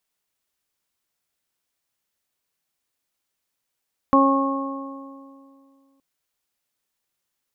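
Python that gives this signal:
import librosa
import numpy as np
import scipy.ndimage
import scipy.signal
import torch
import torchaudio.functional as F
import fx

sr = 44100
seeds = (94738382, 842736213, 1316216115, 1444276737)

y = fx.additive(sr, length_s=1.87, hz=273.0, level_db=-15.0, upper_db=(-4, -8, 1.0), decay_s=2.41, upper_decays_s=(2.15, 1.98, 1.89))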